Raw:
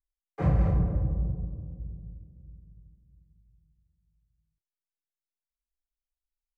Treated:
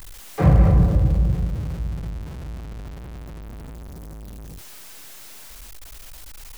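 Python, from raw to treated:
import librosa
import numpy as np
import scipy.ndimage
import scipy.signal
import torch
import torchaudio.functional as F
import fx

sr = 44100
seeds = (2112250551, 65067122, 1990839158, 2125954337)

y = x + 0.5 * 10.0 ** (-40.0 / 20.0) * np.sign(x)
y = y * librosa.db_to_amplitude(9.0)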